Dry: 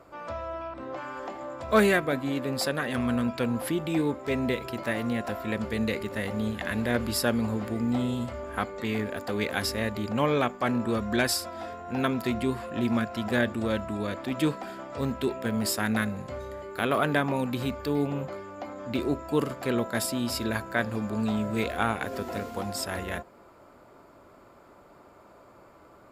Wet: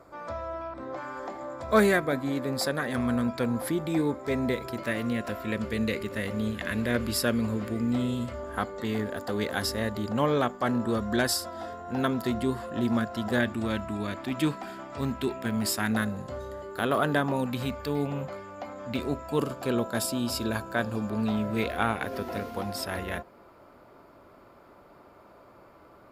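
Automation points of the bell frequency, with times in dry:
bell -10 dB 0.31 oct
2800 Hz
from 4.78 s 810 Hz
from 8.34 s 2400 Hz
from 13.4 s 500 Hz
from 15.91 s 2300 Hz
from 17.46 s 340 Hz
from 19.39 s 2000 Hz
from 21.09 s 7500 Hz

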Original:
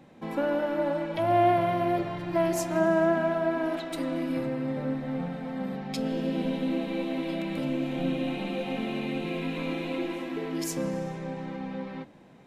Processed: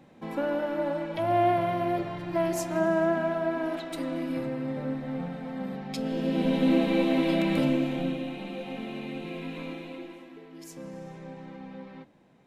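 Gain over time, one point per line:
6.04 s -1.5 dB
6.7 s +6.5 dB
7.6 s +6.5 dB
8.3 s -5 dB
9.61 s -5 dB
10.49 s -15.5 dB
11.16 s -7 dB

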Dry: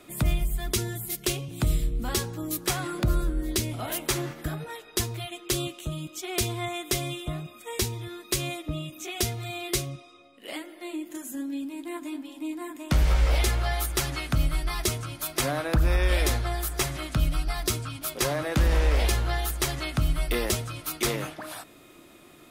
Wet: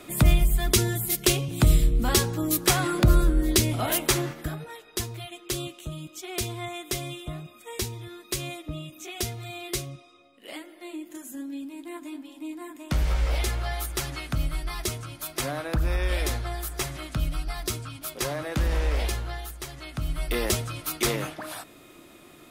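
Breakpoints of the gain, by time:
3.95 s +6 dB
4.7 s -3 dB
19 s -3 dB
19.68 s -11 dB
20.47 s +1.5 dB

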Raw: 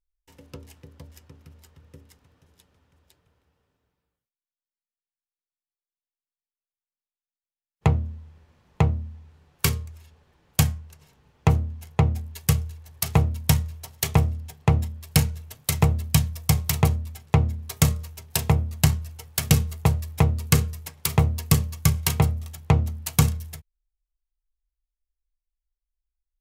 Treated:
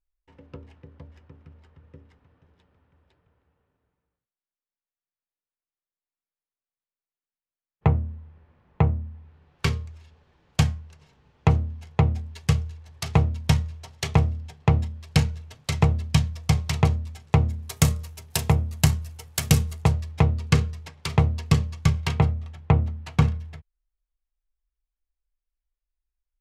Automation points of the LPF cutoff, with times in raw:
9.11 s 2200 Hz
9.88 s 5200 Hz
16.85 s 5200 Hz
17.71 s 12000 Hz
19.66 s 12000 Hz
20.1 s 4500 Hz
21.81 s 4500 Hz
22.46 s 2600 Hz

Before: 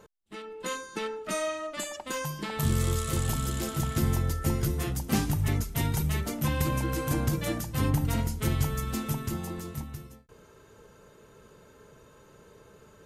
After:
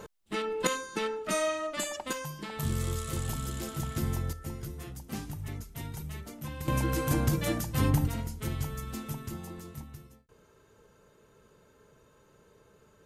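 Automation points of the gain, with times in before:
+9 dB
from 0.67 s +1.5 dB
from 2.13 s -5 dB
from 4.33 s -11.5 dB
from 6.68 s +0.5 dB
from 8.08 s -6.5 dB

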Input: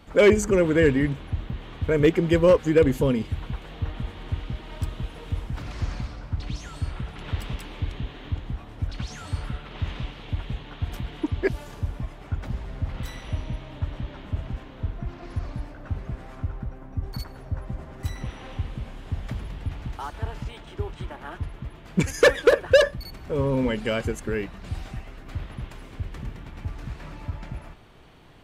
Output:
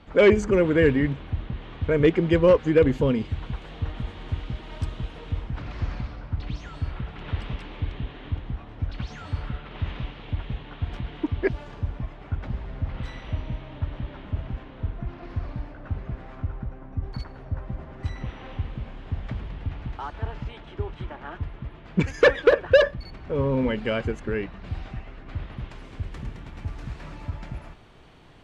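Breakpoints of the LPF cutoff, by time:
3.04 s 4100 Hz
3.6 s 7100 Hz
4.9 s 7100 Hz
5.54 s 3500 Hz
25.3 s 3500 Hz
26.1 s 9000 Hz

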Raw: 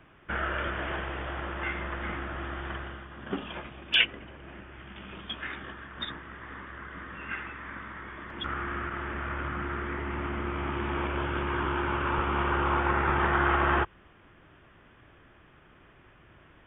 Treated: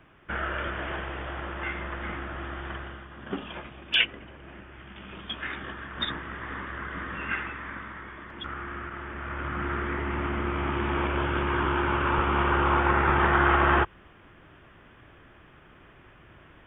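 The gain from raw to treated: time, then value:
4.97 s 0 dB
6.19 s +6.5 dB
7.19 s +6.5 dB
8.51 s -3 dB
9.13 s -3 dB
9.68 s +3.5 dB

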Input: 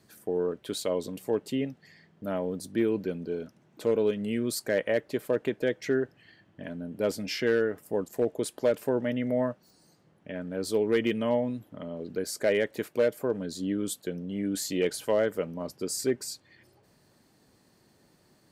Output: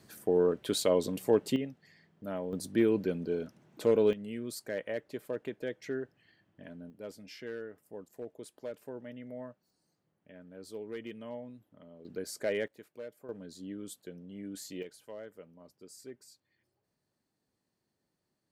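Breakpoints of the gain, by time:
+2.5 dB
from 1.56 s -6 dB
from 2.53 s 0 dB
from 4.13 s -9.5 dB
from 6.9 s -16 dB
from 12.05 s -7 dB
from 12.68 s -19.5 dB
from 13.29 s -12 dB
from 14.83 s -20 dB

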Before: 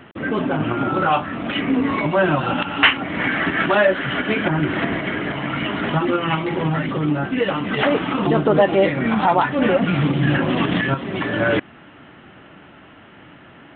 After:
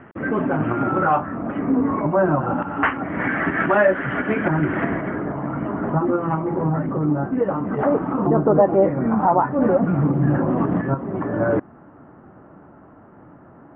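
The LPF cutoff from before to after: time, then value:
LPF 24 dB/oct
0.96 s 1900 Hz
1.44 s 1300 Hz
2.56 s 1300 Hz
3.3 s 1900 Hz
4.87 s 1900 Hz
5.29 s 1200 Hz

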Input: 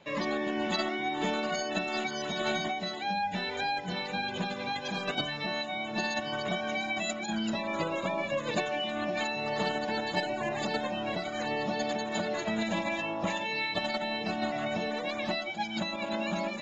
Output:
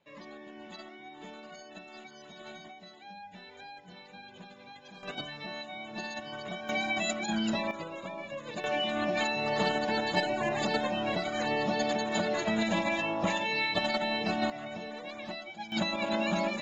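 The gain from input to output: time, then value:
-16 dB
from 5.03 s -7 dB
from 6.69 s +1.5 dB
from 7.71 s -8.5 dB
from 8.64 s +2 dB
from 14.5 s -8 dB
from 15.72 s +2.5 dB

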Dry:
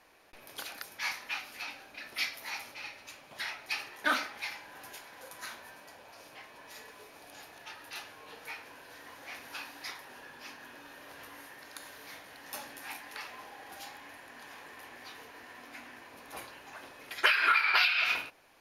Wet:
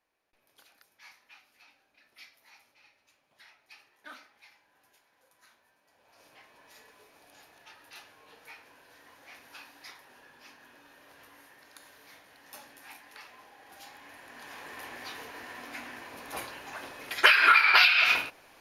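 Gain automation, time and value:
5.82 s -19 dB
6.24 s -6.5 dB
13.58 s -6.5 dB
14.8 s +6 dB

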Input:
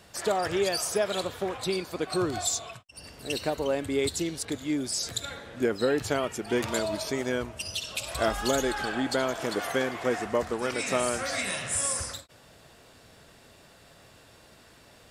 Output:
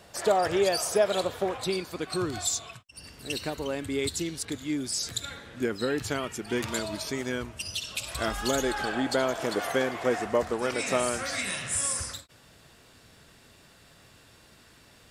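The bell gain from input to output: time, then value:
bell 620 Hz 1.2 oct
1.43 s +4.5 dB
2.06 s -6.5 dB
8.26 s -6.5 dB
8.8 s +2 dB
10.9 s +2 dB
11.38 s -5.5 dB

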